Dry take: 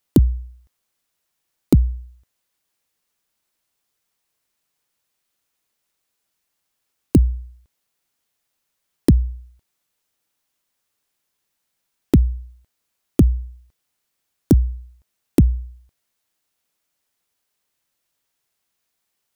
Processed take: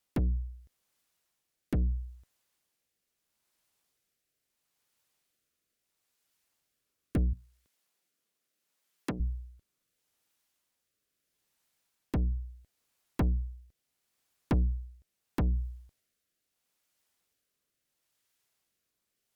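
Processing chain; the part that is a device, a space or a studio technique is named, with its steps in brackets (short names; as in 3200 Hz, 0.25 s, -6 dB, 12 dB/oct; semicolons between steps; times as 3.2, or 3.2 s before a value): overdriven rotary cabinet (tube stage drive 23 dB, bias 0.35; rotary speaker horn 0.75 Hz); 7.33–9.2 HPF 180 Hz 12 dB/oct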